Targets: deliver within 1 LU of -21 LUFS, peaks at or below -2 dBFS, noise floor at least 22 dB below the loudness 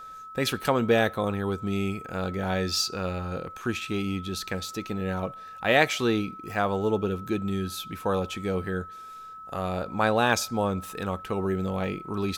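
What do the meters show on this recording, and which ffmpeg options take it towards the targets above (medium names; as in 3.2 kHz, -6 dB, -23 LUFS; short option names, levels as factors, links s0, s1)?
steady tone 1.3 kHz; tone level -40 dBFS; loudness -28.0 LUFS; peak level -5.0 dBFS; loudness target -21.0 LUFS
-> -af "bandreject=f=1300:w=30"
-af "volume=2.24,alimiter=limit=0.794:level=0:latency=1"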